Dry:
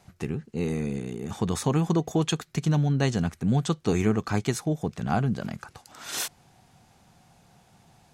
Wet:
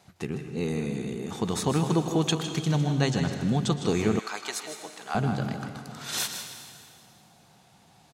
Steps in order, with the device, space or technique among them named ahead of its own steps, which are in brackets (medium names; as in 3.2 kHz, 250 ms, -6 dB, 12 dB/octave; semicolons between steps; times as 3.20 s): PA in a hall (high-pass 150 Hz 6 dB/octave; peaking EQ 3.9 kHz +4 dB 0.5 oct; delay 157 ms -10 dB; reverberation RT60 2.3 s, pre-delay 107 ms, DRR 8 dB); 4.19–5.15 s: Bessel high-pass 1 kHz, order 2